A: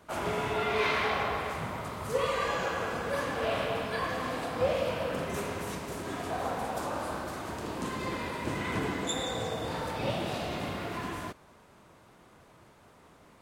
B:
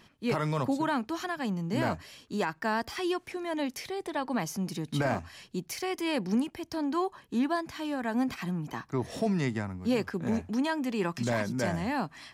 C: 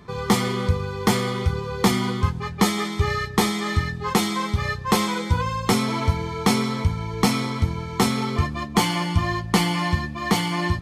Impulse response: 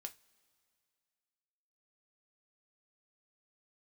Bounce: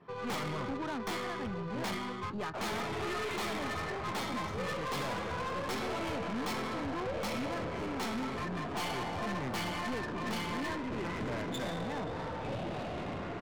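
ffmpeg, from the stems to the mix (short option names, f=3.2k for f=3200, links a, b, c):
-filter_complex "[0:a]acrossover=split=460|3000[a][b][c];[b]acompressor=threshold=-34dB:ratio=6[d];[a][d][c]amix=inputs=3:normalize=0,adelay=2450,volume=0dB[e];[1:a]highpass=f=89:w=0.5412,highpass=f=89:w=1.3066,volume=-4dB[f];[2:a]highpass=f=540:p=1,adynamicequalizer=threshold=0.0158:dfrequency=2800:dqfactor=0.88:tfrequency=2800:tqfactor=0.88:attack=5:release=100:ratio=0.375:range=1.5:mode=cutabove:tftype=bell,flanger=delay=7.2:depth=4.7:regen=62:speed=1.2:shape=sinusoidal,volume=0dB[g];[e][f][g]amix=inputs=3:normalize=0,adynamicsmooth=sensitivity=5.5:basefreq=1.6k,aeval=exprs='(tanh(44.7*val(0)+0.25)-tanh(0.25))/44.7':c=same"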